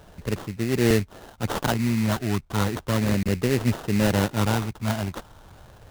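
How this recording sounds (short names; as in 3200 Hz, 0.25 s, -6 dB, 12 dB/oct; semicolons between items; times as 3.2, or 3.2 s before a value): phasing stages 4, 0.35 Hz, lowest notch 480–1000 Hz; aliases and images of a low sample rate 2300 Hz, jitter 20%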